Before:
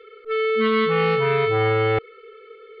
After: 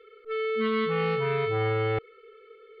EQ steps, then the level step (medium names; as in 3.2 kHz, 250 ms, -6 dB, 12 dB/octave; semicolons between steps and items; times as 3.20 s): bass shelf 240 Hz +4 dB; -8.0 dB